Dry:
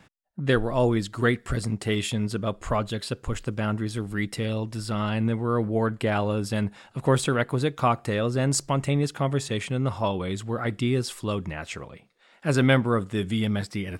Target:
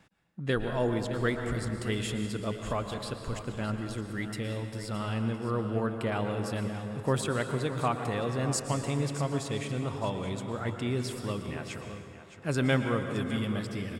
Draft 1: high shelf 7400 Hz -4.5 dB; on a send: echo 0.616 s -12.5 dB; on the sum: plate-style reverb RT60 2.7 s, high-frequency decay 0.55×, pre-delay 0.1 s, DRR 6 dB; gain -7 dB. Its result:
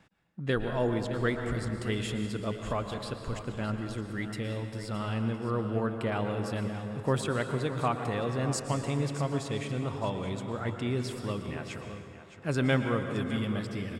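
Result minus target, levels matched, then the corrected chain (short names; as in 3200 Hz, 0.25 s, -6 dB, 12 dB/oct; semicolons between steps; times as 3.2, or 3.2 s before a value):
8000 Hz band -3.0 dB
high shelf 7400 Hz +2 dB; on a send: echo 0.616 s -12.5 dB; on the sum: plate-style reverb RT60 2.7 s, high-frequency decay 0.55×, pre-delay 0.1 s, DRR 6 dB; gain -7 dB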